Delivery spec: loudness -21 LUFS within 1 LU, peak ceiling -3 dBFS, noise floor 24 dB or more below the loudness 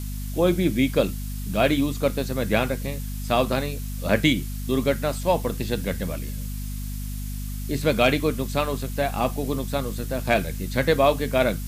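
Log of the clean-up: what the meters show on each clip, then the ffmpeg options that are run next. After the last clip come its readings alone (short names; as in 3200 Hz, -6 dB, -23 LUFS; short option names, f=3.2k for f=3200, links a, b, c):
hum 50 Hz; harmonics up to 250 Hz; hum level -28 dBFS; noise floor -31 dBFS; noise floor target -49 dBFS; loudness -24.5 LUFS; peak -4.5 dBFS; loudness target -21.0 LUFS
-> -af "bandreject=f=50:t=h:w=6,bandreject=f=100:t=h:w=6,bandreject=f=150:t=h:w=6,bandreject=f=200:t=h:w=6,bandreject=f=250:t=h:w=6"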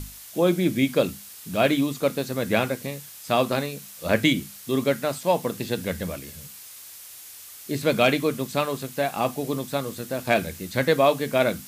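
hum none; noise floor -43 dBFS; noise floor target -49 dBFS
-> -af "afftdn=nr=6:nf=-43"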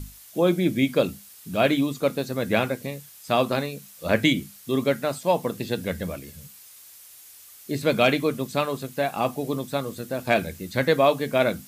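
noise floor -48 dBFS; noise floor target -49 dBFS
-> -af "afftdn=nr=6:nf=-48"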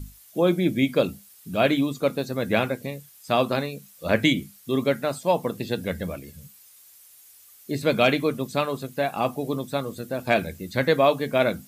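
noise floor -52 dBFS; loudness -24.5 LUFS; peak -5.0 dBFS; loudness target -21.0 LUFS
-> -af "volume=3.5dB,alimiter=limit=-3dB:level=0:latency=1"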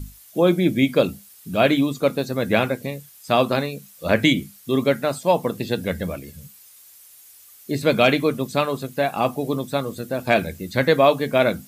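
loudness -21.5 LUFS; peak -3.0 dBFS; noise floor -48 dBFS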